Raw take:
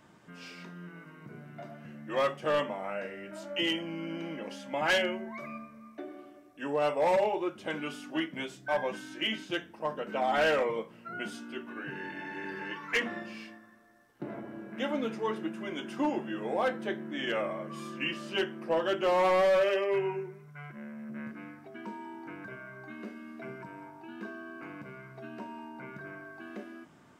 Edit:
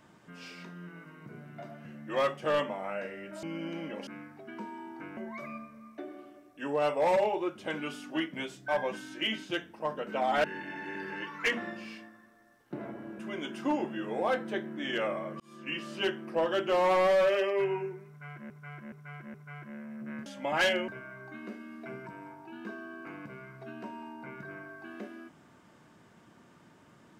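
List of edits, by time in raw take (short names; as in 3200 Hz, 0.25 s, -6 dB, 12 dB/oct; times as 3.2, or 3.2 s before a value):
3.43–3.91 cut
4.55–5.17 swap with 21.34–22.44
10.44–11.93 cut
14.68–15.53 cut
17.74–18.38 fade in equal-power
20.42–20.84 loop, 4 plays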